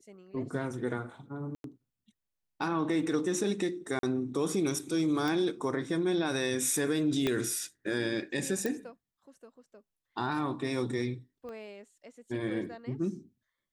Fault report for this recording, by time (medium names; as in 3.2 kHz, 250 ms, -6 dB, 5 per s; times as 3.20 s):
1.55–1.64 s: dropout 92 ms
3.99–4.03 s: dropout 42 ms
5.28 s: pop
7.27 s: pop -15 dBFS
8.66 s: pop
11.49 s: pop -33 dBFS